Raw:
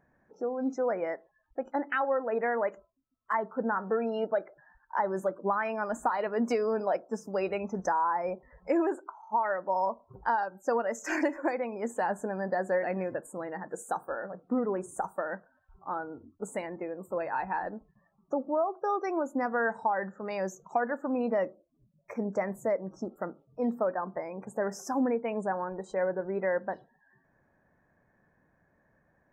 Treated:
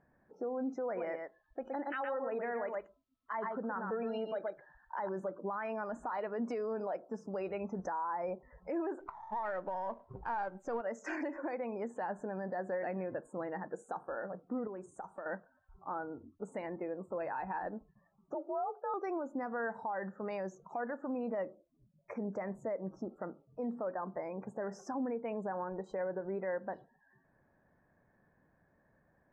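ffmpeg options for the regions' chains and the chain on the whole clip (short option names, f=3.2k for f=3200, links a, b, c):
-filter_complex "[0:a]asettb=1/sr,asplit=3[a][b][c];[a]atrim=end=0.854[d];[b]atrim=start=0.85:end=5.09,asetpts=PTS-STARTPTS,afade=t=in:d=0.004:c=qsin,afade=t=out:st=4.236:d=0.004:c=qsin,equalizer=f=3.7k:t=o:w=1.1:g=9.5,aecho=1:1:118:0.422,atrim=end_sample=186984[e];[c]atrim=start=5.086[f];[d][e]acrossfade=d=0.004:c1=hsin:c2=qsin[g];[g][f]acrossfade=d=0.004:c1=qsin:c2=hsin,asettb=1/sr,asplit=3[h][i][j];[h]atrim=end=9.004[k];[i]atrim=start=9:end=10.81,asetpts=PTS-STARTPTS,afade=t=in:d=0.004:c=qsin,afade=t=out:st=1.806:d=0.004:c=qsin,aeval=exprs='if(lt(val(0),0),0.708*val(0),val(0))':c=same,acontrast=30[l];[j]atrim=start=10.806[m];[k][l]acrossfade=d=0.004:c1=hsin:c2=qsin[n];[n][m]acrossfade=d=0.004:c1=qsin:c2=hsin,asettb=1/sr,asplit=3[o][p][q];[o]atrim=end=14.674[r];[p]atrim=start=14.67:end=15.26,asetpts=PTS-STARTPTS,afade=t=in:d=0.004:c=qsin,afade=t=out:st=0.586:d=0.004:c=qsin,aemphasis=mode=production:type=50kf,acompressor=threshold=-46dB:ratio=2:attack=3.2:release=140:knee=1:detection=peak,lowpass=f=9.1k:w=0.5412,lowpass=f=9.1k:w=1.3066[s];[q]atrim=start=15.256[t];[r][s]acrossfade=d=0.004:c1=hsin:c2=qsin[u];[u][t]acrossfade=d=0.004:c1=qsin:c2=hsin,asettb=1/sr,asplit=3[v][w][x];[v]atrim=end=18.344[y];[w]atrim=start=18.34:end=18.94,asetpts=PTS-STARTPTS,afade=t=in:d=0.004:c=qsin,afade=t=out:st=0.596:d=0.004:c=qsin,afreqshift=55,highpass=380,lowpass=2.9k,bandreject=f=1.1k:w=5.3[z];[x]atrim=start=18.936[aa];[y][z]acrossfade=d=0.004:c1=hsin:c2=qsin[ab];[ab][aa]acrossfade=d=0.004:c1=qsin:c2=hsin,lowpass=8.3k,aemphasis=mode=reproduction:type=75fm,alimiter=level_in=3dB:limit=-24dB:level=0:latency=1:release=92,volume=-3dB,volume=-2.5dB"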